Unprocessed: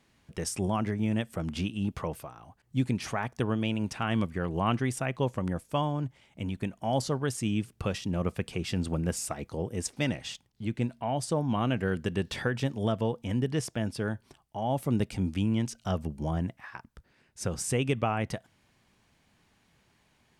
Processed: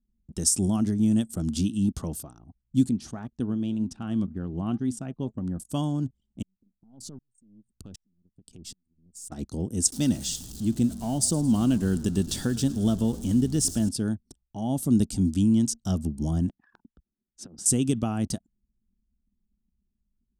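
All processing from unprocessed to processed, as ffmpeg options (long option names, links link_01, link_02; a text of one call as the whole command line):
ffmpeg -i in.wav -filter_complex "[0:a]asettb=1/sr,asplit=3[link_01][link_02][link_03];[link_01]atrim=end=2.894[link_04];[link_02]atrim=start=2.89:end=5.6,asetpts=PTS-STARTPTS,afade=type=in:duration=0.004:curve=qsin,afade=type=out:start_time=2.706:duration=0.004:curve=qsin,lowpass=frequency=2300:poles=1,flanger=delay=3.7:depth=2.7:regen=86:speed=2:shape=triangular[link_05];[link_03]atrim=start=5.596[link_06];[link_04][link_05]acrossfade=duration=0.004:curve1=hsin:curve2=qsin[link_07];[link_07][link_06]acrossfade=duration=0.004:curve1=qsin:curve2=hsin,asettb=1/sr,asplit=3[link_08][link_09][link_10];[link_08]atrim=end=6.424[link_11];[link_09]atrim=start=6.42:end=9.32,asetpts=PTS-STARTPTS,afade=type=in:duration=0.004:curve=qsin,afade=type=out:start_time=2.896:duration=0.004:curve=qsin,aeval=exprs='if(lt(val(0),0),0.708*val(0),val(0))':channel_layout=same,acompressor=threshold=-41dB:ratio=5:attack=3.2:release=140:knee=1:detection=peak,aeval=exprs='val(0)*pow(10,-27*if(lt(mod(-1.3*n/s,1),2*abs(-1.3)/1000),1-mod(-1.3*n/s,1)/(2*abs(-1.3)/1000),(mod(-1.3*n/s,1)-2*abs(-1.3)/1000)/(1-2*abs(-1.3)/1000))/20)':channel_layout=same[link_12];[link_10]atrim=start=9.316[link_13];[link_11][link_12]acrossfade=duration=0.004:curve1=hsin:curve2=qsin[link_14];[link_14][link_13]acrossfade=duration=0.004:curve1=qsin:curve2=hsin,asettb=1/sr,asplit=3[link_15][link_16][link_17];[link_15]atrim=end=9.924[link_18];[link_16]atrim=start=9.92:end=13.89,asetpts=PTS-STARTPTS,afade=type=in:duration=0.004:curve=qsin,afade=type=out:start_time=3.966:duration=0.004:curve=qsin,aeval=exprs='val(0)+0.5*0.0075*sgn(val(0))':channel_layout=same,asplit=6[link_19][link_20][link_21][link_22][link_23][link_24];[link_20]adelay=108,afreqshift=-46,volume=-19dB[link_25];[link_21]adelay=216,afreqshift=-92,volume=-23.3dB[link_26];[link_22]adelay=324,afreqshift=-138,volume=-27.6dB[link_27];[link_23]adelay=432,afreqshift=-184,volume=-31.9dB[link_28];[link_24]adelay=540,afreqshift=-230,volume=-36.2dB[link_29];[link_19][link_25][link_26][link_27][link_28][link_29]amix=inputs=6:normalize=0,atrim=end_sample=175077[link_30];[link_17]atrim=start=13.886[link_31];[link_18][link_30]acrossfade=duration=0.004:curve1=hsin:curve2=qsin[link_32];[link_32][link_31]acrossfade=duration=0.004:curve1=qsin:curve2=hsin,asettb=1/sr,asplit=3[link_33][link_34][link_35];[link_33]atrim=end=16.494[link_36];[link_34]atrim=start=16.49:end=17.66,asetpts=PTS-STARTPTS,afade=type=in:duration=0.004:curve=qsin,afade=type=out:start_time=1.166:duration=0.004:curve=qsin,acrossover=split=210 3700:gain=0.2 1 0.1[link_37][link_38][link_39];[link_37][link_38][link_39]amix=inputs=3:normalize=0,acompressor=threshold=-44dB:ratio=12:attack=3.2:release=140:knee=1:detection=peak[link_40];[link_35]atrim=start=17.656[link_41];[link_36][link_40]acrossfade=duration=0.004:curve1=hsin:curve2=qsin[link_42];[link_42][link_41]acrossfade=duration=0.004:curve1=qsin:curve2=hsin,equalizer=frequency=125:width_type=o:width=1:gain=-7,equalizer=frequency=250:width_type=o:width=1:gain=5,equalizer=frequency=500:width_type=o:width=1:gain=-12,equalizer=frequency=1000:width_type=o:width=1:gain=-11,equalizer=frequency=2000:width_type=o:width=1:gain=-9,equalizer=frequency=8000:width_type=o:width=1:gain=7,anlmdn=0.000398,equalizer=frequency=2300:width_type=o:width=0.87:gain=-12,volume=8dB" out.wav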